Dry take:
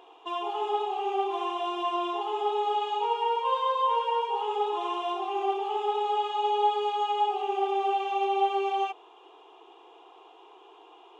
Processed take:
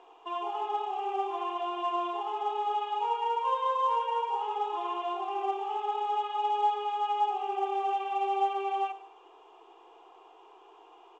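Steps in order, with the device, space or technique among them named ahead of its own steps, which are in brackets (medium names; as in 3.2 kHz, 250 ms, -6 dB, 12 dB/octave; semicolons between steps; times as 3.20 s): distance through air 210 m; bass shelf 480 Hz -4 dB; feedback delay 107 ms, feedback 40%, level -17 dB; dynamic bell 430 Hz, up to -6 dB, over -46 dBFS, Q 6.6; telephone (band-pass 260–3200 Hz; µ-law 128 kbps 16 kHz)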